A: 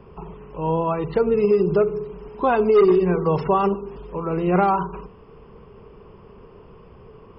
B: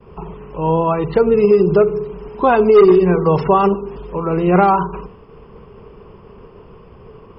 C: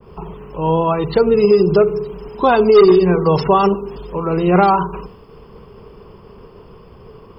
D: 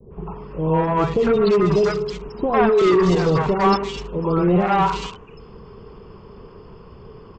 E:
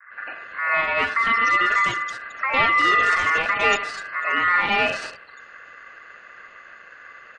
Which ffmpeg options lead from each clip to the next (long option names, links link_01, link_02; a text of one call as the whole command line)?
ffmpeg -i in.wav -af "agate=range=-33dB:threshold=-43dB:ratio=3:detection=peak,volume=6dB" out.wav
ffmpeg -i in.wav -af "aexciter=amount=3.8:drive=2.2:freq=3600,adynamicequalizer=threshold=0.0224:dfrequency=2800:dqfactor=0.7:tfrequency=2800:tqfactor=0.7:attack=5:release=100:ratio=0.375:range=2:mode=boostabove:tftype=highshelf" out.wav
ffmpeg -i in.wav -filter_complex "[0:a]aresample=16000,volume=12dB,asoftclip=hard,volume=-12dB,aresample=44100,acrossover=split=620|2700[link_01][link_02][link_03];[link_02]adelay=100[link_04];[link_03]adelay=340[link_05];[link_01][link_04][link_05]amix=inputs=3:normalize=0" out.wav
ffmpeg -i in.wav -af "aeval=exprs='val(0)*sin(2*PI*1600*n/s)':channel_layout=same" out.wav